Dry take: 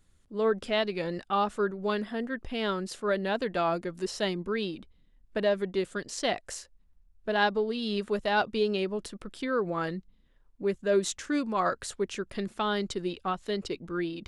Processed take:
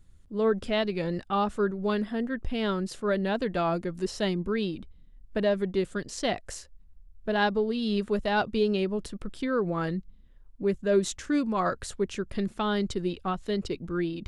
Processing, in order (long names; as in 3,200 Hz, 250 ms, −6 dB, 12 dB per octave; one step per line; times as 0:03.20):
low-shelf EQ 210 Hz +11.5 dB
level −1 dB